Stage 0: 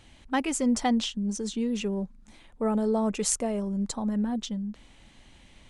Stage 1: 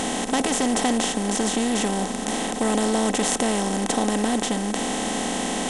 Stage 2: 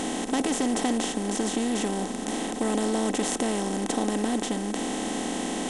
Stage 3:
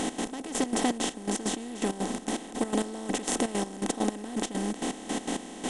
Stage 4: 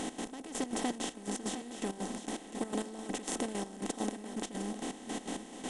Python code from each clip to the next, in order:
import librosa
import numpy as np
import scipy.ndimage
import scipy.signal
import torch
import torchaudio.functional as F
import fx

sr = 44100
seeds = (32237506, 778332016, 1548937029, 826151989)

y1 = fx.bin_compress(x, sr, power=0.2)
y1 = y1 * librosa.db_to_amplitude(-2.0)
y2 = fx.peak_eq(y1, sr, hz=320.0, db=7.0, octaves=0.67)
y2 = y2 * librosa.db_to_amplitude(-6.0)
y3 = fx.step_gate(y2, sr, bpm=165, pattern='x.x...x.xx.x..', floor_db=-12.0, edge_ms=4.5)
y4 = y3 + 10.0 ** (-11.0 / 20.0) * np.pad(y3, (int(708 * sr / 1000.0), 0))[:len(y3)]
y4 = y4 * librosa.db_to_amplitude(-7.5)